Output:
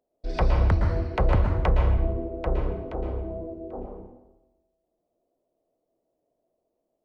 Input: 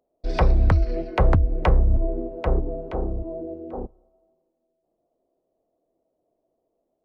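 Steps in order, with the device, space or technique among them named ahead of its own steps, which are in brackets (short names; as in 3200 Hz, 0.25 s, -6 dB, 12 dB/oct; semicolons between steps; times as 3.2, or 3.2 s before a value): bathroom (reverb RT60 0.95 s, pre-delay 0.11 s, DRR 2 dB); gain -4.5 dB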